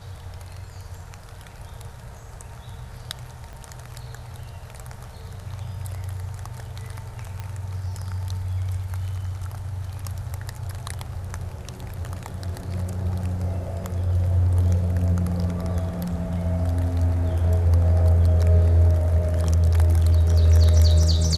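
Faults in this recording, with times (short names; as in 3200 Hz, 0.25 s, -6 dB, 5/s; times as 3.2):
3.53 pop -28 dBFS
7.4 pop -19 dBFS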